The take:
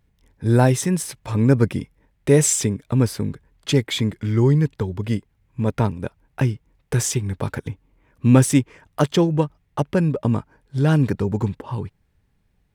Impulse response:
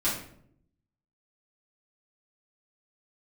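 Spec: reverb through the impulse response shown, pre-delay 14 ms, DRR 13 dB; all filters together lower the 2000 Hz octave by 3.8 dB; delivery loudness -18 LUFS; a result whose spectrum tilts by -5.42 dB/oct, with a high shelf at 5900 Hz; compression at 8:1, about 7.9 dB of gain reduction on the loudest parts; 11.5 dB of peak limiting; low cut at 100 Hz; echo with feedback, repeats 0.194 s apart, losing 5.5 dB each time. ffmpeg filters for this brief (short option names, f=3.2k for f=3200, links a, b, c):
-filter_complex "[0:a]highpass=100,equalizer=f=2k:t=o:g=-4.5,highshelf=f=5.9k:g=-5.5,acompressor=threshold=-17dB:ratio=8,alimiter=limit=-19.5dB:level=0:latency=1,aecho=1:1:194|388|582|776|970|1164|1358:0.531|0.281|0.149|0.079|0.0419|0.0222|0.0118,asplit=2[a][b];[1:a]atrim=start_sample=2205,adelay=14[c];[b][c]afir=irnorm=-1:irlink=0,volume=-22.5dB[d];[a][d]amix=inputs=2:normalize=0,volume=11dB"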